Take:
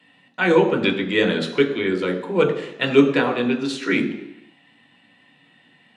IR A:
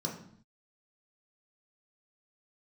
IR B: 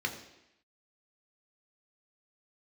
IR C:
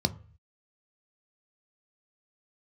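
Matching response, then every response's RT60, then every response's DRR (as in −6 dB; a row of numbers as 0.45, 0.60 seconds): B; 0.60, 0.85, 0.40 seconds; −1.5, 2.0, 9.5 decibels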